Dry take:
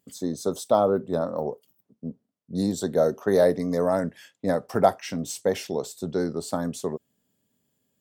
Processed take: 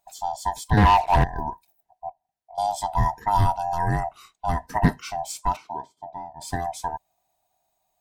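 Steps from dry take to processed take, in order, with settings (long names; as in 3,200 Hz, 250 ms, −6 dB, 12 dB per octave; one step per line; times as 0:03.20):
neighbouring bands swapped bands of 500 Hz
0:00.77–0:01.24: leveller curve on the samples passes 3
0:02.09–0:02.58: downward compressor 6 to 1, threshold −44 dBFS, peak gain reduction 16.5 dB
0:05.55–0:06.40: resonant band-pass 660 Hz → 160 Hz, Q 0.91
highs frequency-modulated by the lows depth 0.12 ms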